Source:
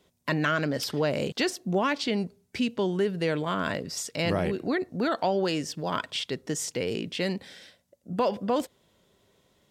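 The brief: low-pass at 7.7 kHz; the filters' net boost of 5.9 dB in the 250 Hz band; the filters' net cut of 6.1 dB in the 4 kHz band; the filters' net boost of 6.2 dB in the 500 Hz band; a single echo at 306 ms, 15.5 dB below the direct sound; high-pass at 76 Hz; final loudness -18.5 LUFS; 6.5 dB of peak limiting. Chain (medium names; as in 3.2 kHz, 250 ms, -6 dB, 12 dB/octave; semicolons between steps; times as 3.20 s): high-pass 76 Hz; low-pass 7.7 kHz; peaking EQ 250 Hz +6 dB; peaking EQ 500 Hz +6 dB; peaking EQ 4 kHz -8.5 dB; peak limiter -15.5 dBFS; delay 306 ms -15.5 dB; trim +8 dB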